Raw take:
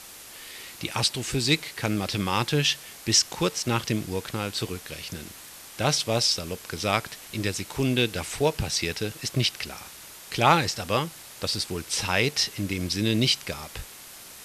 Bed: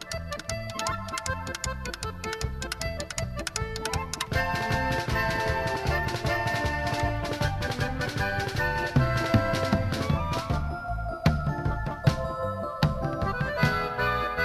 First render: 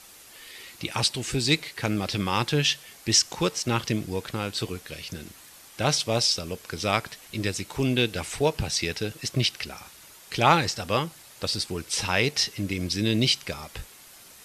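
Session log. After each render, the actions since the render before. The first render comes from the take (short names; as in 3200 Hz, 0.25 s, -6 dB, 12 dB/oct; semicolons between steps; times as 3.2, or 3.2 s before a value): denoiser 6 dB, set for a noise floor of -45 dBFS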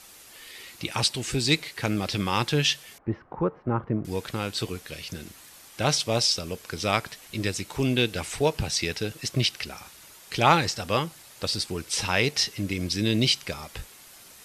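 2.98–4.05 LPF 1300 Hz 24 dB/oct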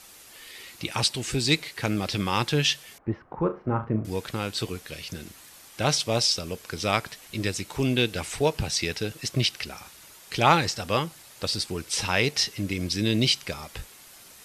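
3.38–4.1 flutter echo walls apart 6.2 m, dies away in 0.25 s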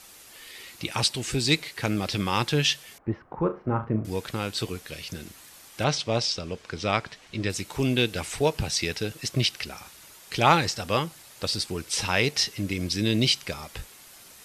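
5.84–7.5 air absorption 91 m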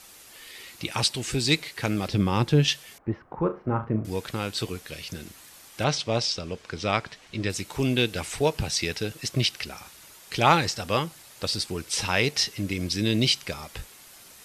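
2.08–2.68 tilt shelf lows +6.5 dB, about 720 Hz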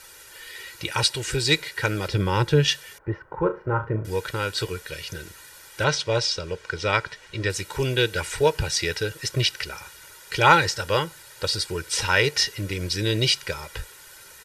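bell 1600 Hz +8.5 dB 0.47 oct; comb 2.1 ms, depth 77%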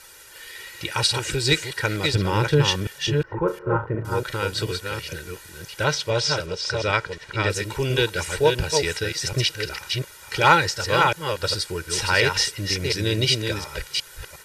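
reverse delay 0.359 s, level -4 dB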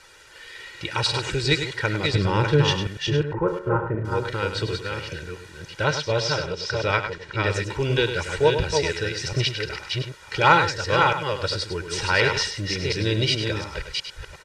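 air absorption 87 m; echo 0.101 s -9 dB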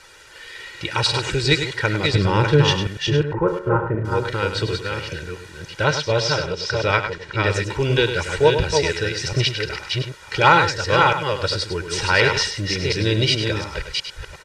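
gain +3.5 dB; limiter -1 dBFS, peak gain reduction 2.5 dB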